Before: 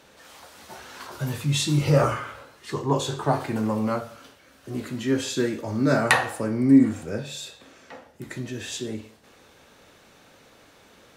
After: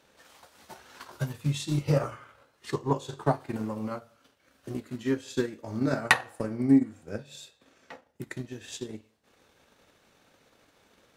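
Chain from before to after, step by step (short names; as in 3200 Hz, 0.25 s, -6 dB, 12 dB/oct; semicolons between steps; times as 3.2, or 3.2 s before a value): transient shaper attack +10 dB, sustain -8 dB; gain -9.5 dB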